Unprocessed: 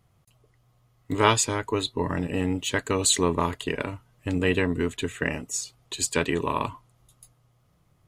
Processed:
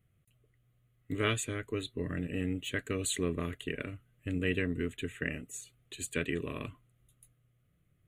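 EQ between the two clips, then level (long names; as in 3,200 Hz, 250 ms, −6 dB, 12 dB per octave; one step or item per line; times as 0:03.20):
phaser with its sweep stopped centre 2,200 Hz, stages 4
−6.5 dB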